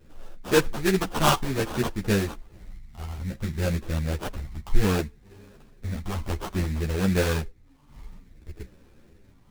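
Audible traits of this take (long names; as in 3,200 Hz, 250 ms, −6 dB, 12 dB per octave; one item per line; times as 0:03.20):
phaser sweep stages 8, 0.6 Hz, lowest notch 480–2,700 Hz
aliases and images of a low sample rate 2,100 Hz, jitter 20%
a shimmering, thickened sound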